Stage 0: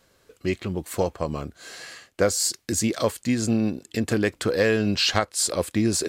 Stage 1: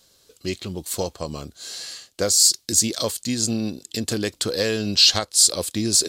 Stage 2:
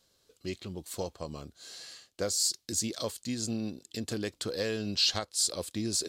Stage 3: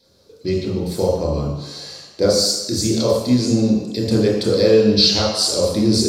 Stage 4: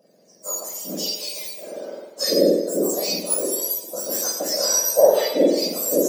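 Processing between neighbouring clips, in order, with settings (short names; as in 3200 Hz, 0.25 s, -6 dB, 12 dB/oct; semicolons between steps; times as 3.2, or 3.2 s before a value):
resonant high shelf 2900 Hz +10 dB, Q 1.5; gain -2.5 dB
high shelf 4200 Hz -5.5 dB; gain -9 dB
reverb RT60 1.0 s, pre-delay 23 ms, DRR -5.5 dB; gain +1.5 dB
spectrum mirrored in octaves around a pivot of 1600 Hz; gain -2 dB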